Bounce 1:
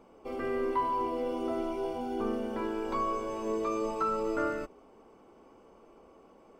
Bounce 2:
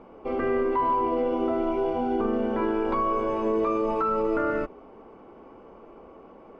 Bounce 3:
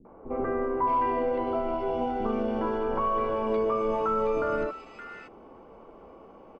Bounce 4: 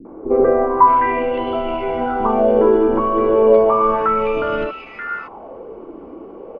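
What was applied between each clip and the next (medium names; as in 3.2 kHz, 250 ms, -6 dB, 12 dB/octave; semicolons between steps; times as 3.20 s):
low-pass 2.4 kHz 12 dB/octave; peak limiter -26 dBFS, peak gain reduction 6.5 dB; trim +9 dB
three bands offset in time lows, mids, highs 50/620 ms, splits 310/1800 Hz
distance through air 160 m; sweeping bell 0.33 Hz 300–3100 Hz +15 dB; trim +7.5 dB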